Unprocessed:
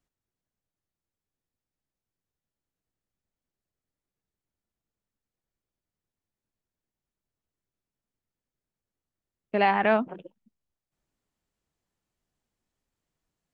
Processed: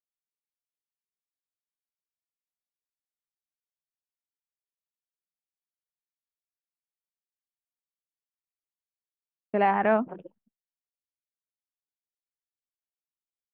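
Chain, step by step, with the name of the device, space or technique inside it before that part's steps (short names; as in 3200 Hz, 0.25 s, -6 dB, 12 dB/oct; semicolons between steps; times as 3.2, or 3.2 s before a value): hearing-loss simulation (LPF 1700 Hz 12 dB/oct; expander -54 dBFS)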